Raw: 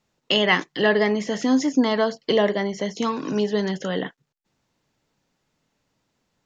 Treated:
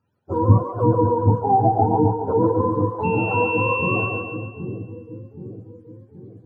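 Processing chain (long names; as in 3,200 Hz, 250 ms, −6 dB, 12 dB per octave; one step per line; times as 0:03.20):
frequency axis turned over on the octave scale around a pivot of 450 Hz
0:03.03–0:04.05: steady tone 2,700 Hz −32 dBFS
echo with a time of its own for lows and highs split 390 Hz, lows 774 ms, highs 140 ms, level −3.5 dB
level +2 dB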